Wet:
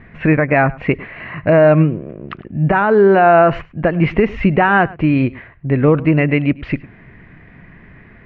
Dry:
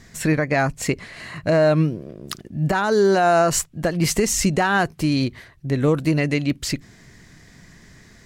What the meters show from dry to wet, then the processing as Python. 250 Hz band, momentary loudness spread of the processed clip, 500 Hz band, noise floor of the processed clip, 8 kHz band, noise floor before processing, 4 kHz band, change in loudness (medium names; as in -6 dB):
+6.0 dB, 15 LU, +6.5 dB, -44 dBFS, under -40 dB, -49 dBFS, -6.5 dB, +6.0 dB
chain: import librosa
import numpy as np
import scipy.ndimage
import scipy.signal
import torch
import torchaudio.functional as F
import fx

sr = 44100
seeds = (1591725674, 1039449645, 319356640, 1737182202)

y = scipy.signal.sosfilt(scipy.signal.ellip(4, 1.0, 80, 2600.0, 'lowpass', fs=sr, output='sos'), x)
y = y + 10.0 ** (-21.0 / 20.0) * np.pad(y, (int(104 * sr / 1000.0), 0))[:len(y)]
y = y * librosa.db_to_amplitude(7.0)